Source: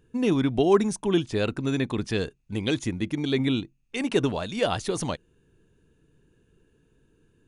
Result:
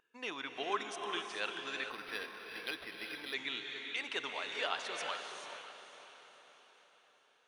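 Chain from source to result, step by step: high-pass 1.4 kHz 12 dB/octave; vibrato 5.8 Hz 13 cents; tape spacing loss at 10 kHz 20 dB; echo that smears into a reverb 538 ms, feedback 46%, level -11 dB; gated-style reverb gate 460 ms rising, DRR 4.5 dB; 1.90–3.34 s: decimation joined by straight lines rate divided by 6×; trim +1 dB

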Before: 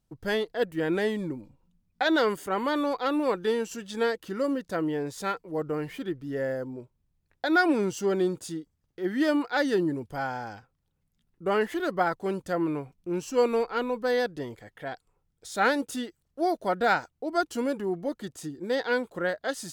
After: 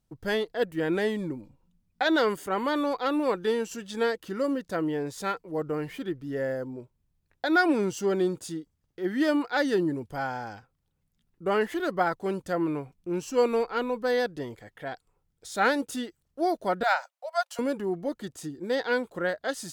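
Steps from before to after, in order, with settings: 16.83–17.59 s: Chebyshev high-pass 540 Hz, order 8

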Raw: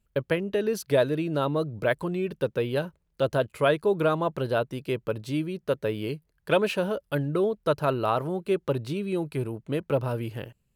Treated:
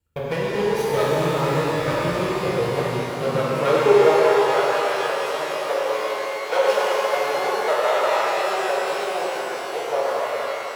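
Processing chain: comb filter that takes the minimum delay 2.1 ms; high-pass sweep 63 Hz -> 650 Hz, 2.66–4.25 s; pitch-shifted reverb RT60 3.8 s, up +12 st, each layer -8 dB, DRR -7.5 dB; trim -3 dB

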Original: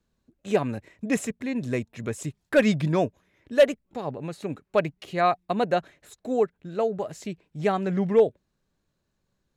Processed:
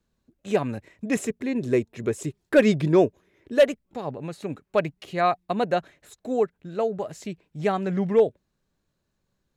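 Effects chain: 1.16–3.59 s: peaking EQ 380 Hz +10.5 dB 0.55 oct

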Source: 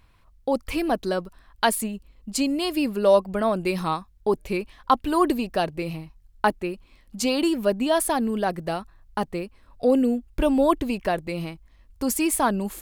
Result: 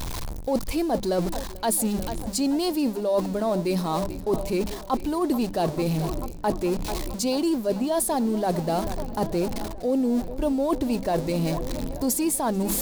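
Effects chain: jump at every zero crossing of -30 dBFS; filtered feedback delay 440 ms, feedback 79%, low-pass 4.3 kHz, level -19 dB; reverse; compression 6:1, threshold -28 dBFS, peak gain reduction 14.5 dB; reverse; high-order bell 1.9 kHz -8 dB; hum notches 50/100/150/200 Hz; trim +6.5 dB

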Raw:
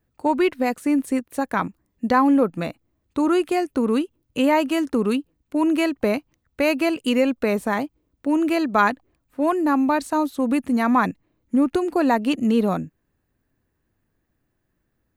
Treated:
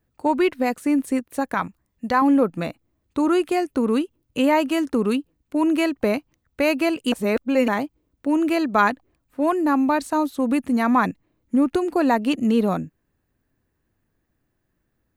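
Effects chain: 1.54–2.22 s: peaking EQ 310 Hz -7 dB 1.4 oct; 7.12–7.68 s: reverse

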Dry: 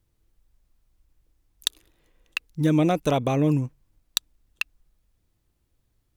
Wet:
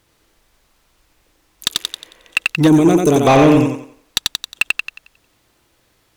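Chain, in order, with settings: thinning echo 90 ms, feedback 34%, high-pass 190 Hz, level -4 dB; time-frequency box 2.68–3.27 s, 460–6000 Hz -15 dB; overdrive pedal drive 23 dB, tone 4.7 kHz, clips at -4.5 dBFS; trim +4.5 dB

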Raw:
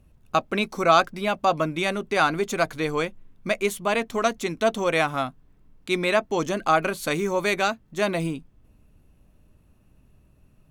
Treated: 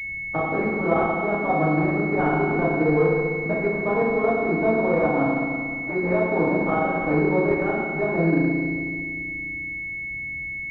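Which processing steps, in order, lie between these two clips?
compression 2:1, threshold -31 dBFS, peak gain reduction 10.5 dB; FDN reverb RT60 1.9 s, low-frequency decay 1.4×, high-frequency decay 0.55×, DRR -9 dB; class-D stage that switches slowly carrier 2.2 kHz

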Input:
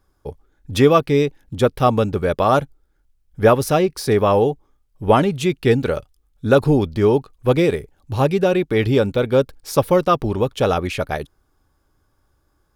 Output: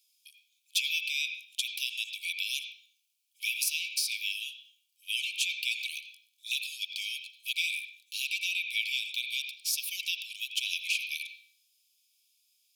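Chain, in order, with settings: Chebyshev high-pass 2.3 kHz, order 10; compression 2:1, threshold -40 dBFS, peak gain reduction 9.5 dB; on a send: reverberation RT60 0.45 s, pre-delay 76 ms, DRR 4 dB; on the sum: trim +7.5 dB

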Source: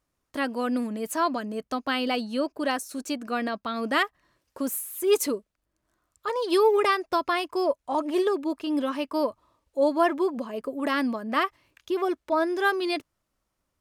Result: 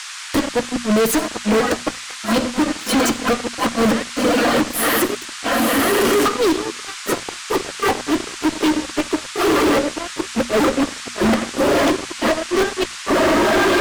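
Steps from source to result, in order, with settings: rattle on loud lows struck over -36 dBFS, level -33 dBFS; echo that smears into a reverb 1079 ms, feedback 74%, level -11.5 dB; reverb removal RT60 0.74 s; inverted gate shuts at -20 dBFS, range -35 dB; peaking EQ 900 Hz -4.5 dB 1 oct; on a send at -16 dB: reverberation RT60 0.80 s, pre-delay 6 ms; on the sum: fuzz box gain 48 dB, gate -56 dBFS; band noise 1.1–8.8 kHz -29 dBFS; peaking EQ 14 kHz -6.5 dB 2.2 oct; hum notches 60/120/180/240 Hz

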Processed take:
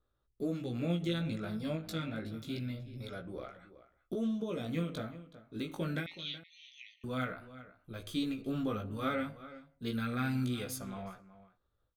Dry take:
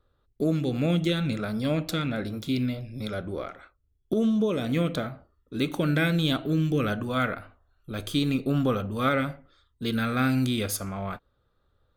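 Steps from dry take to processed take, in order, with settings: chorus 0.28 Hz, delay 16 ms, depth 2.7 ms; 6.06–7.04 s: brick-wall FIR band-pass 1.8–6.5 kHz; echo from a far wall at 64 m, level -15 dB; endings held to a fixed fall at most 140 dB/s; trim -7 dB

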